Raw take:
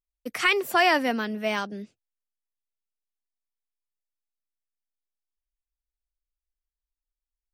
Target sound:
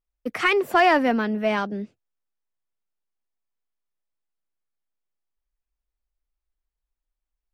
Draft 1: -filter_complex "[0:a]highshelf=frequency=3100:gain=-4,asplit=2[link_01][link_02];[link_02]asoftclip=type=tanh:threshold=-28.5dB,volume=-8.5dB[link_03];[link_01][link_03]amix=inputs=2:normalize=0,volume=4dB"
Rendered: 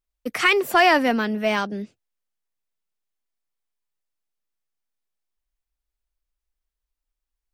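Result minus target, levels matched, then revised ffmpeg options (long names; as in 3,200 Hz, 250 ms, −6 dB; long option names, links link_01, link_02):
8,000 Hz band +6.5 dB
-filter_complex "[0:a]highshelf=frequency=3100:gain=-15,asplit=2[link_01][link_02];[link_02]asoftclip=type=tanh:threshold=-28.5dB,volume=-8.5dB[link_03];[link_01][link_03]amix=inputs=2:normalize=0,volume=4dB"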